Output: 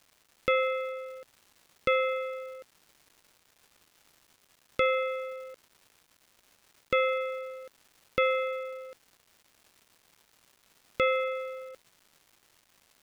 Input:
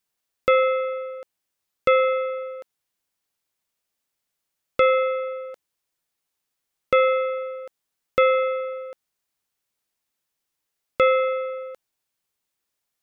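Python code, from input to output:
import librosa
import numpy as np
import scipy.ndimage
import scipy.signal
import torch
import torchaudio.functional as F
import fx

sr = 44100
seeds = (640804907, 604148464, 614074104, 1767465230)

y = fx.peak_eq(x, sr, hz=810.0, db=-13.0, octaves=1.2)
y = fx.dmg_crackle(y, sr, seeds[0], per_s=510.0, level_db=-46.0)
y = F.gain(torch.from_numpy(y), -2.5).numpy()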